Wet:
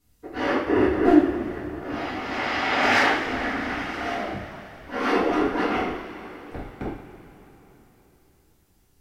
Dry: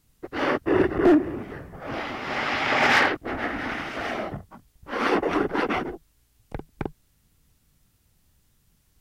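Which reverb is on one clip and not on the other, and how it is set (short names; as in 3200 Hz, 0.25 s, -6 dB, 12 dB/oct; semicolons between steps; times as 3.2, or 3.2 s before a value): two-slope reverb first 0.55 s, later 3.9 s, from -15 dB, DRR -8.5 dB; gain -8.5 dB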